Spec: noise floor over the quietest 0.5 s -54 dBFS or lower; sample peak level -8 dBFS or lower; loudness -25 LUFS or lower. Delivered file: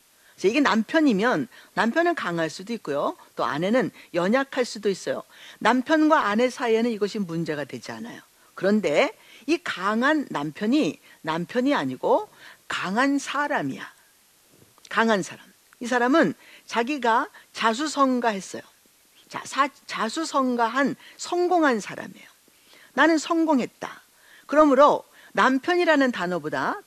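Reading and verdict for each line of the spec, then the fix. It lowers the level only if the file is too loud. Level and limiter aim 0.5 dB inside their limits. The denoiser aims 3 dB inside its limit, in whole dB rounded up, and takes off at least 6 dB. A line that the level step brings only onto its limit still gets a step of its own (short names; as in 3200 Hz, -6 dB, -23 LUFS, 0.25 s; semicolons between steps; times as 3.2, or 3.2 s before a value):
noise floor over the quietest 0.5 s -59 dBFS: OK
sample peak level -5.0 dBFS: fail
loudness -23.5 LUFS: fail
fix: gain -2 dB; limiter -8.5 dBFS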